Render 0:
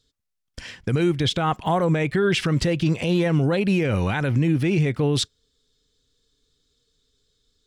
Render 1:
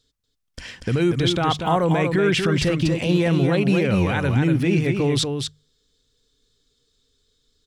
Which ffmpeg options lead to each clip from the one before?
-af "bandreject=f=50:t=h:w=6,bandreject=f=100:t=h:w=6,bandreject=f=150:t=h:w=6,aecho=1:1:238:0.531,volume=1dB"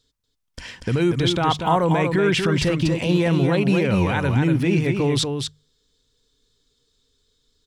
-af "equalizer=f=950:t=o:w=0.21:g=6"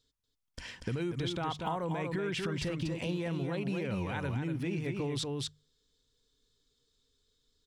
-af "acompressor=threshold=-23dB:ratio=6,volume=-8dB"

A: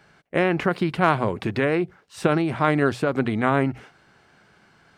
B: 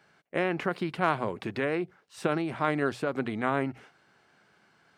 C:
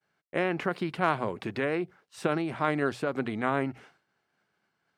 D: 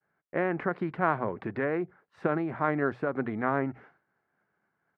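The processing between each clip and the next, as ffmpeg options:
-af "highpass=f=180:p=1,volume=-6.5dB"
-af "agate=range=-33dB:threshold=-54dB:ratio=3:detection=peak"
-af "firequalizer=gain_entry='entry(1800,0);entry(2800,-14);entry(7900,-29)':delay=0.05:min_phase=1"

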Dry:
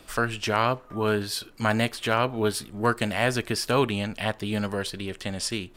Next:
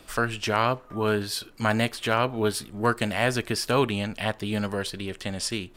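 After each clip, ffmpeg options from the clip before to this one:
-af anull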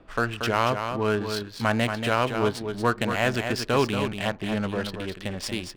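-af "adynamicsmooth=sensitivity=6:basefreq=1.4k,aecho=1:1:232:0.447"

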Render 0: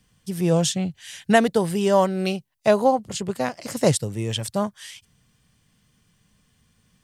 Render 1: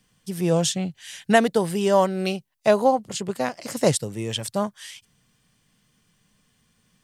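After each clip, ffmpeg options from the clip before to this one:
-af "equalizer=f=64:t=o:w=1.6:g=-10"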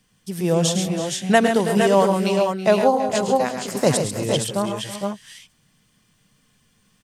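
-af "aecho=1:1:106|137|325|354|458|473:0.335|0.398|0.168|0.141|0.376|0.501,volume=1dB"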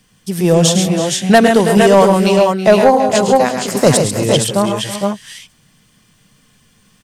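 -af "aeval=exprs='0.891*sin(PI/2*1.78*val(0)/0.891)':c=same"

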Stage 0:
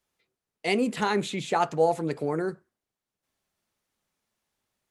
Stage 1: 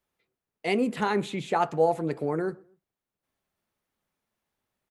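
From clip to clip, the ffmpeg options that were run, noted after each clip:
-filter_complex "[0:a]equalizer=f=6.4k:w=0.56:g=-7,asplit=2[a][b];[b]adelay=124,lowpass=f=1.2k:p=1,volume=-24dB,asplit=2[c][d];[d]adelay=124,lowpass=f=1.2k:p=1,volume=0.39[e];[a][c][e]amix=inputs=3:normalize=0"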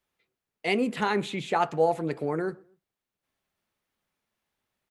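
-af "equalizer=f=2.8k:t=o:w=2.1:g=4,volume=-1dB"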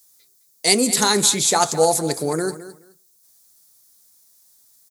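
-af "aexciter=amount=15.7:drive=6:freq=4.3k,aecho=1:1:213|426:0.188|0.0339,volume=6dB"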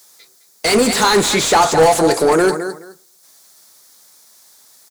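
-filter_complex "[0:a]asplit=2[a][b];[b]highpass=f=720:p=1,volume=28dB,asoftclip=type=tanh:threshold=-1dB[c];[a][c]amix=inputs=2:normalize=0,lowpass=f=1.8k:p=1,volume=-6dB,volume=-1dB"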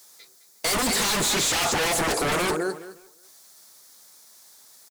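-filter_complex "[0:a]aeval=exprs='0.178*(abs(mod(val(0)/0.178+3,4)-2)-1)':c=same,asplit=2[a][b];[b]adelay=360,highpass=300,lowpass=3.4k,asoftclip=type=hard:threshold=-25dB,volume=-22dB[c];[a][c]amix=inputs=2:normalize=0,volume=-3.5dB"

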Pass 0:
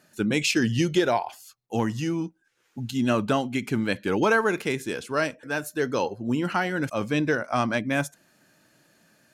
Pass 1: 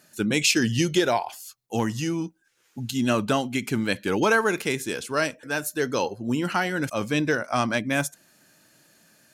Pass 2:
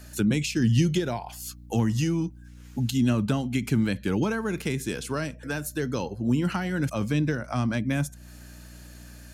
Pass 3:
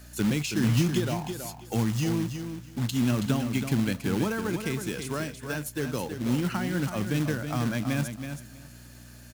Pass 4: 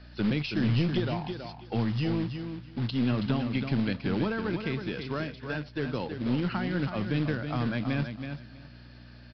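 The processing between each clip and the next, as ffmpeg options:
-af "highshelf=f=3.8k:g=8"
-filter_complex "[0:a]aeval=exprs='val(0)+0.00282*(sin(2*PI*60*n/s)+sin(2*PI*2*60*n/s)/2+sin(2*PI*3*60*n/s)/3+sin(2*PI*4*60*n/s)/4+sin(2*PI*5*60*n/s)/5)':c=same,acrossover=split=220[a][b];[b]acompressor=threshold=-37dB:ratio=6[c];[a][c]amix=inputs=2:normalize=0,volume=6.5dB"
-af "acrusher=bits=3:mode=log:mix=0:aa=0.000001,aecho=1:1:325|650|975:0.398|0.0717|0.0129,volume=-2.5dB"
-af "aeval=exprs='(tanh(7.08*val(0)+0.3)-tanh(0.3))/7.08':c=same,aresample=11025,aresample=44100"

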